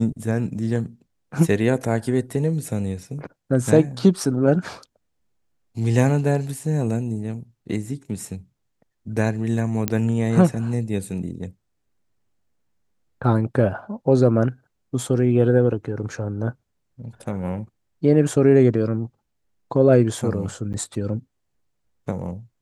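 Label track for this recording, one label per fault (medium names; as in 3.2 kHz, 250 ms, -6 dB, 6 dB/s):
9.880000	9.880000	pop -6 dBFS
20.730000	20.740000	dropout 8.5 ms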